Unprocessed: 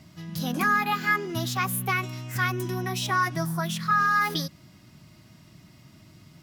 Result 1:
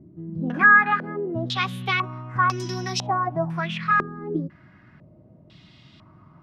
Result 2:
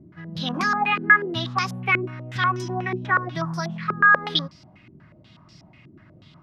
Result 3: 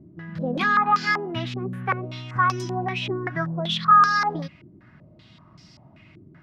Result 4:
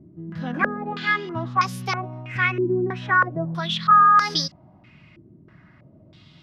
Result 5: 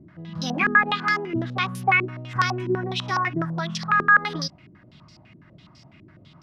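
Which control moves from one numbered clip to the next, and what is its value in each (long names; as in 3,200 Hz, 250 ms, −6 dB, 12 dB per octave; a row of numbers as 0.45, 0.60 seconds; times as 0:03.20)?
low-pass on a step sequencer, speed: 2, 8.2, 5.2, 3.1, 12 Hertz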